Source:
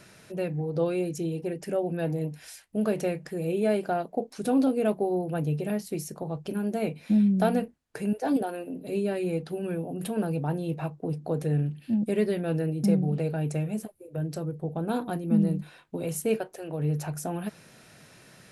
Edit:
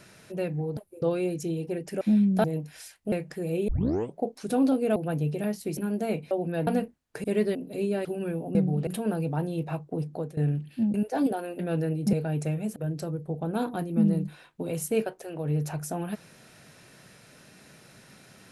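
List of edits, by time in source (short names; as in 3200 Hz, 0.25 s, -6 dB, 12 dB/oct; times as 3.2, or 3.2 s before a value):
1.76–2.12 swap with 7.04–7.47
2.8–3.07 cut
3.63 tape start 0.52 s
4.91–5.22 cut
6.03–6.5 cut
8.04–8.69 swap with 12.05–12.36
9.19–9.48 cut
11.21–11.48 fade out, to -18.5 dB
12.9–13.22 move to 9.98
13.85–14.1 move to 0.77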